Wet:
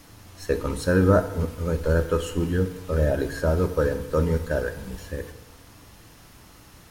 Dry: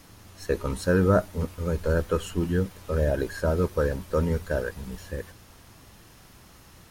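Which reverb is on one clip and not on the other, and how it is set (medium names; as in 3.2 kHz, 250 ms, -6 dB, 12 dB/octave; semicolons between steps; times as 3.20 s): FDN reverb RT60 1 s, low-frequency decay 0.95×, high-frequency decay 0.8×, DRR 8.5 dB; trim +1.5 dB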